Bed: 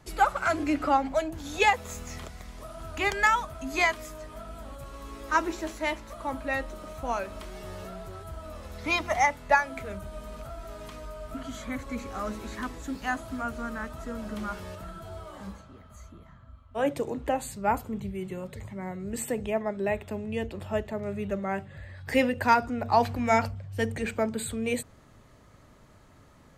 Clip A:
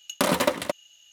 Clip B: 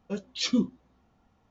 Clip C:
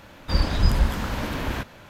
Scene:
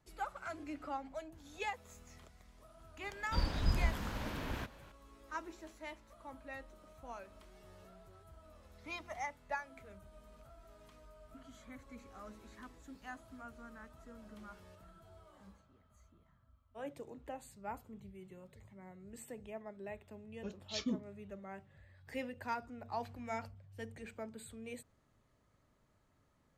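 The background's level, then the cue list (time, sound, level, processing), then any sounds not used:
bed -18 dB
3.03 s: add C -12.5 dB
20.33 s: add B -12 dB
not used: A

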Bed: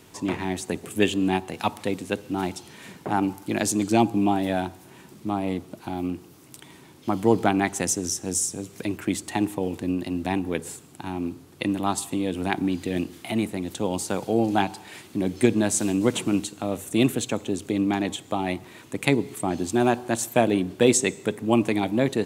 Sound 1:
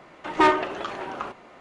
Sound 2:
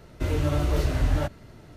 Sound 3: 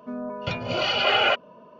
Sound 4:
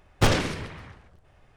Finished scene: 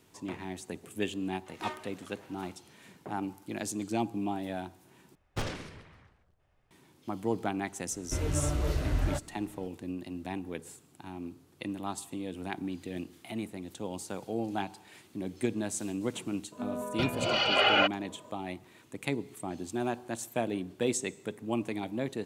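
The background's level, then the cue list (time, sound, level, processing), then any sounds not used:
bed -11.5 dB
1.22 s: add 1 -10 dB + pre-emphasis filter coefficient 0.8
5.15 s: replace with 4 -14 dB
7.91 s: add 2 -6 dB
16.52 s: add 3 -3.5 dB

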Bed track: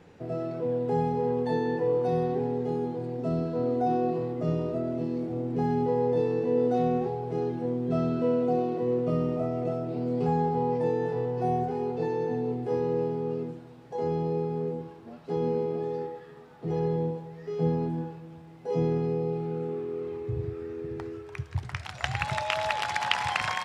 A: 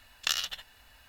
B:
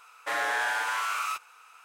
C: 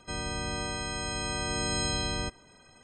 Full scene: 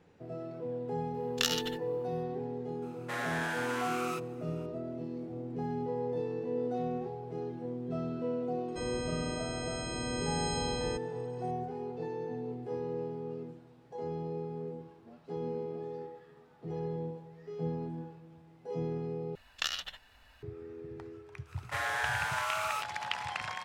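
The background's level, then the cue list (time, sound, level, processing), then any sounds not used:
bed track -9 dB
1.14 s: add A -1.5 dB + gate -51 dBFS, range -12 dB
2.82 s: add B -7.5 dB
8.68 s: add C -6.5 dB
19.35 s: replace with A -1.5 dB + low-pass 3.3 kHz 6 dB/octave
21.45 s: add B -4.5 dB, fades 0.05 s + bass shelf 230 Hz -11.5 dB

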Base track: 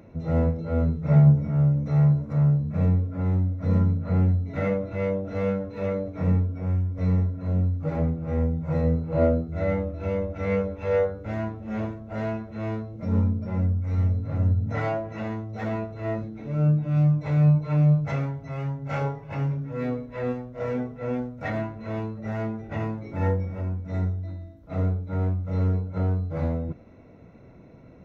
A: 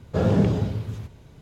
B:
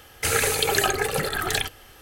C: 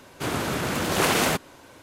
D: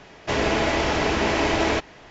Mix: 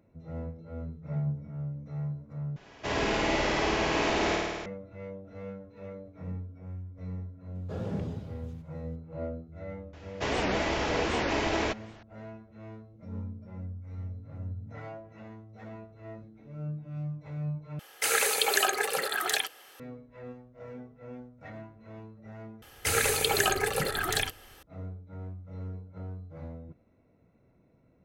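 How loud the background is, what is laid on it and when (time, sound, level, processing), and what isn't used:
base track -15.5 dB
2.56 s: replace with D -9 dB + flutter echo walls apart 9 m, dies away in 1.5 s
7.55 s: add A -15 dB
9.93 s: add D -7 dB + warped record 78 rpm, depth 250 cents
17.79 s: replace with B -3 dB + high-pass 450 Hz
22.62 s: replace with B -4 dB
not used: C

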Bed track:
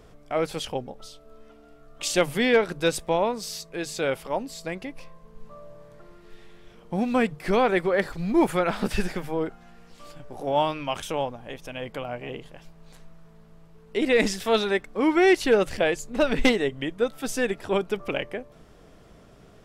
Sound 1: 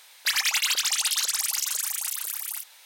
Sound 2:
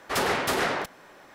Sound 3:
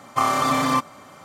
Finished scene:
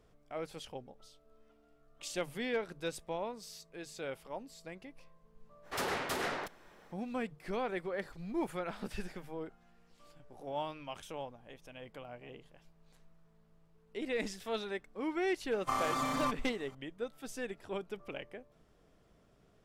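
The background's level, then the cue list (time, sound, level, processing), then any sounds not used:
bed track -15 dB
5.62 s: add 2 -10 dB, fades 0.05 s
15.51 s: add 3 -13.5 dB
not used: 1

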